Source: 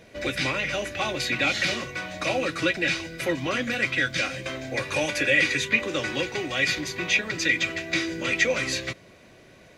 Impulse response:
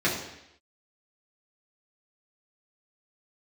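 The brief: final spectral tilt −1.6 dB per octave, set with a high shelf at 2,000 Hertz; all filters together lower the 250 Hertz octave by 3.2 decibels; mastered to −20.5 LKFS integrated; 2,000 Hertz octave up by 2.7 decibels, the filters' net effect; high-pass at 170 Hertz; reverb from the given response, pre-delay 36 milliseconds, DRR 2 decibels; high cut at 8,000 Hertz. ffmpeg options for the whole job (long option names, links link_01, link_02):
-filter_complex "[0:a]highpass=170,lowpass=8000,equalizer=frequency=250:width_type=o:gain=-3.5,highshelf=frequency=2000:gain=-8,equalizer=frequency=2000:width_type=o:gain=8,asplit=2[link_01][link_02];[1:a]atrim=start_sample=2205,adelay=36[link_03];[link_02][link_03]afir=irnorm=-1:irlink=0,volume=-15.5dB[link_04];[link_01][link_04]amix=inputs=2:normalize=0,volume=1dB"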